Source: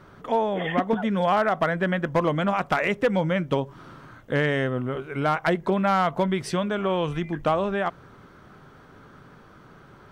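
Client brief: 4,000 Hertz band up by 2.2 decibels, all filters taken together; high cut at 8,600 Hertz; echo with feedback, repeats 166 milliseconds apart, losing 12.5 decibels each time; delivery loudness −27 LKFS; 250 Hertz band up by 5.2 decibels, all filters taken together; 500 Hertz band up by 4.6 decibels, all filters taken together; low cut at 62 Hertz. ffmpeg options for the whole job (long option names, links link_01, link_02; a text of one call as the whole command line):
ffmpeg -i in.wav -af "highpass=62,lowpass=8600,equalizer=frequency=250:width_type=o:gain=6.5,equalizer=frequency=500:width_type=o:gain=4,equalizer=frequency=4000:width_type=o:gain=3,aecho=1:1:166|332|498:0.237|0.0569|0.0137,volume=-6dB" out.wav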